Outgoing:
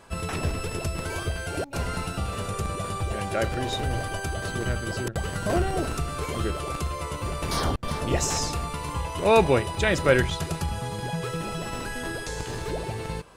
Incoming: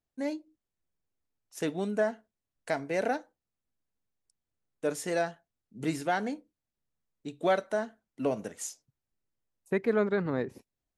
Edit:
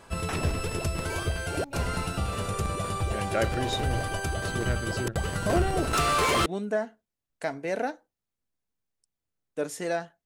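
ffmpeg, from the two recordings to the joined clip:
-filter_complex "[0:a]asettb=1/sr,asplit=3[a][b][c];[a]atrim=end=5.934[d];[b]atrim=start=5.93:end=6.46,asetpts=PTS-STARTPTS,afade=t=in:d=0.004:c=qsin,afade=t=out:st=0.526:d=0.004:c=qsin,asplit=2[e][f];[f]highpass=f=720:p=1,volume=23dB,asoftclip=type=tanh:threshold=-15.5dB[g];[e][g]amix=inputs=2:normalize=0,lowpass=f=6k:p=1,volume=-6dB[h];[c]atrim=start=6.456[i];[d][h]acrossfade=d=0.004:c1=hsin:c2=qsin[j];[j][i]acrossfade=d=0.004:c1=qsin:c2=hsin,apad=whole_dur=10.25,atrim=end=10.25,atrim=end=6.462[k];[1:a]atrim=start=1.718:end=5.51[l];[k][l]acrossfade=d=0.004:c1=hsin:c2=hsin"

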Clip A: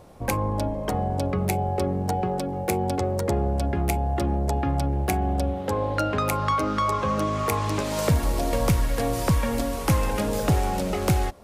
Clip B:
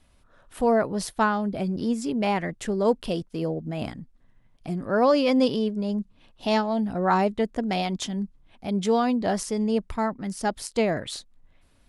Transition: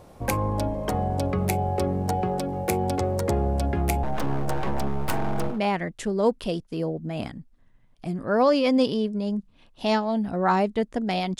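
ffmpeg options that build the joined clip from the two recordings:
-filter_complex "[0:a]asettb=1/sr,asplit=3[a][b][c];[a]atrim=end=4.034[d];[b]atrim=start=4.03:end=5.61,asetpts=PTS-STARTPTS,afade=t=in:d=0.004:c=qsin,afade=t=out:st=1.576:d=0.004:c=qsin,aeval=exprs='abs(val(0))':c=same[e];[c]atrim=start=5.606[f];[d][e]acrossfade=d=0.004:c1=hsin:c2=qsin[g];[g][f]acrossfade=d=0.004:c1=qsin:c2=hsin,apad=whole_dur=11.39,atrim=end=11.39,atrim=end=5.61,asetpts=PTS-STARTPTS[h];[1:a]atrim=start=2.09:end=8.01,asetpts=PTS-STARTPTS[i];[h][i]acrossfade=d=0.14:c1=tri:c2=tri"

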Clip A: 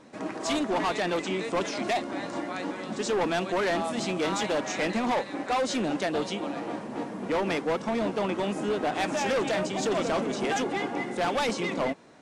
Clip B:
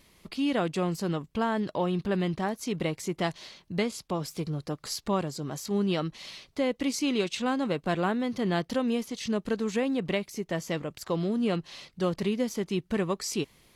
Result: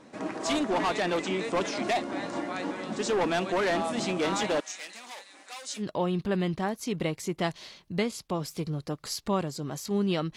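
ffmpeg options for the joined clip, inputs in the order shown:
-filter_complex "[0:a]asettb=1/sr,asplit=3[a][b][c];[a]atrim=end=4.604[d];[b]atrim=start=4.6:end=5.84,asetpts=PTS-STARTPTS,afade=t=in:d=0.004:c=qsin,afade=t=out:st=1.236:d=0.004:c=qsin,aderivative[e];[c]atrim=start=5.836[f];[d][e]acrossfade=d=0.004:c1=hsin:c2=qsin[g];[g][f]acrossfade=d=0.004:c1=qsin:c2=hsin,apad=whole_dur=10.36,atrim=end=10.36,atrim=end=5.84,asetpts=PTS-STARTPTS[h];[1:a]atrim=start=1.56:end=6.16,asetpts=PTS-STARTPTS[i];[h][i]acrossfade=d=0.08:c1=tri:c2=tri"

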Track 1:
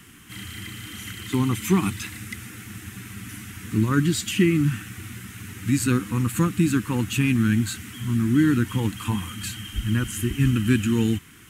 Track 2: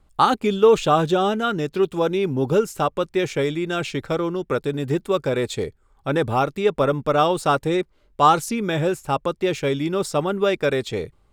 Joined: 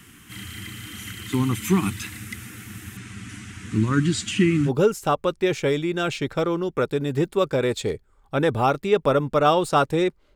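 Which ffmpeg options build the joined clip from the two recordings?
-filter_complex "[0:a]asettb=1/sr,asplit=3[a][b][c];[a]atrim=end=2.974[d];[b]atrim=start=2.97:end=4.71,asetpts=PTS-STARTPTS,afade=t=in:d=0.004:c=qsin,afade=t=out:st=1.736:d=0.004:c=qsin,lowpass=f=8.6k:w=0.5412,lowpass=f=8.6k:w=1.3066[e];[c]atrim=start=4.706[f];[d][e]acrossfade=d=0.004:c1=hsin:c2=qsin[g];[g][f]acrossfade=d=0.004:c1=qsin:c2=hsin,apad=whole_dur=10.35,atrim=end=10.35,atrim=end=4.71,asetpts=PTS-STARTPTS[h];[1:a]atrim=start=2.38:end=8.08,asetpts=PTS-STARTPTS[i];[h][i]acrossfade=d=0.06:c1=tri:c2=tri"

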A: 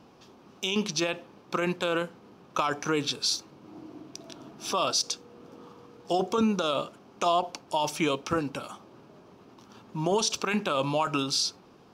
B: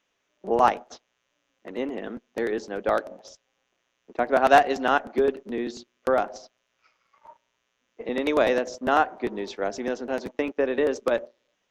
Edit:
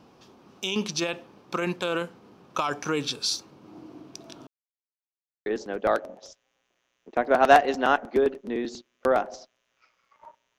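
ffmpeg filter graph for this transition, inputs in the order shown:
-filter_complex "[0:a]apad=whole_dur=10.58,atrim=end=10.58,asplit=2[a][b];[a]atrim=end=4.47,asetpts=PTS-STARTPTS,afade=t=out:st=4.466:d=0.004:c=hsin[c];[b]atrim=start=4.47:end=5.46,asetpts=PTS-STARTPTS,volume=0[d];[1:a]atrim=start=2.48:end=7.6,asetpts=PTS-STARTPTS,afade=t=in:d=0.004:c=hsin[e];[c][d][e]concat=n=3:v=0:a=1"

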